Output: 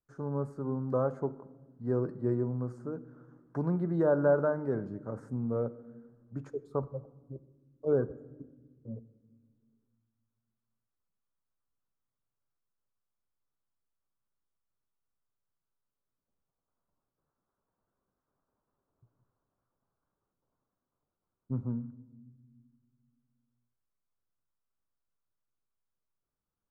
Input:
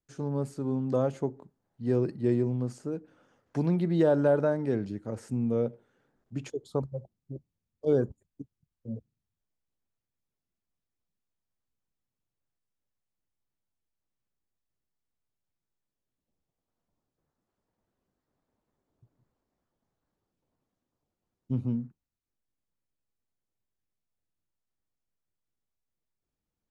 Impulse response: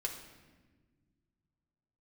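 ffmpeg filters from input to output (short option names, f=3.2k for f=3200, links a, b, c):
-filter_complex "[0:a]highshelf=f=1.9k:t=q:w=3:g=-12.5,asplit=2[a][b];[1:a]atrim=start_sample=2205[c];[b][c]afir=irnorm=-1:irlink=0,volume=-9.5dB[d];[a][d]amix=inputs=2:normalize=0,volume=-6dB"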